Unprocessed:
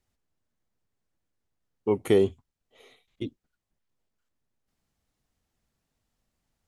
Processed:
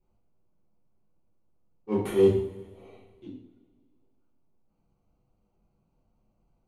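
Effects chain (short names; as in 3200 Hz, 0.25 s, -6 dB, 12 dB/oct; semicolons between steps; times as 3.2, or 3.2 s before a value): Wiener smoothing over 25 samples; auto swell 0.165 s; limiter -20 dBFS, peak gain reduction 5 dB; 2.02–3.27 transient shaper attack -9 dB, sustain +3 dB; two-slope reverb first 0.54 s, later 2 s, from -18 dB, DRR -10 dB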